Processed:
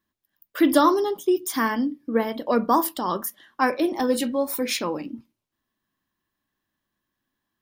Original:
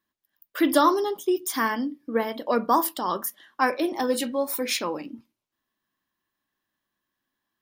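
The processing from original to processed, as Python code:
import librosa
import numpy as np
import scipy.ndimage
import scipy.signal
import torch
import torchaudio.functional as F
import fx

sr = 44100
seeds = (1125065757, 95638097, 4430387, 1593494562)

y = fx.low_shelf(x, sr, hz=250.0, db=8.5)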